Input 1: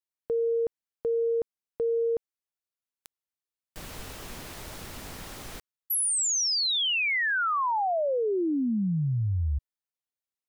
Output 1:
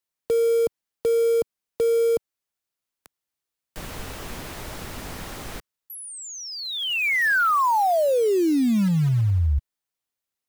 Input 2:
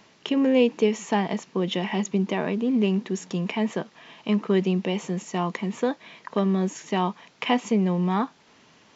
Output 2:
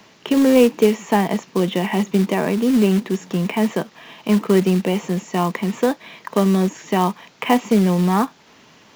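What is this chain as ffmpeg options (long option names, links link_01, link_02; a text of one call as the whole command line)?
ffmpeg -i in.wav -filter_complex "[0:a]acrossover=split=130|2600[link_01][link_02][link_03];[link_02]acrusher=bits=4:mode=log:mix=0:aa=0.000001[link_04];[link_03]acompressor=threshold=-45dB:ratio=6:attack=0.53:release=33:detection=peak[link_05];[link_01][link_04][link_05]amix=inputs=3:normalize=0,volume=6.5dB" out.wav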